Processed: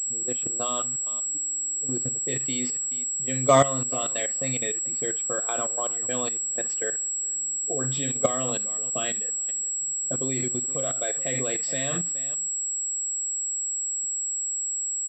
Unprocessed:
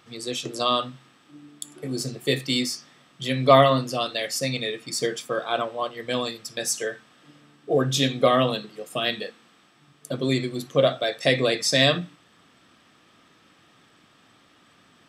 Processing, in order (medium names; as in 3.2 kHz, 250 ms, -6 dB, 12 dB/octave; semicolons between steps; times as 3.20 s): level-controlled noise filter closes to 350 Hz, open at -20.5 dBFS; on a send: delay 420 ms -21.5 dB; on the sum: level held to a coarse grid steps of 15 dB; class-D stage that switches slowly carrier 7.7 kHz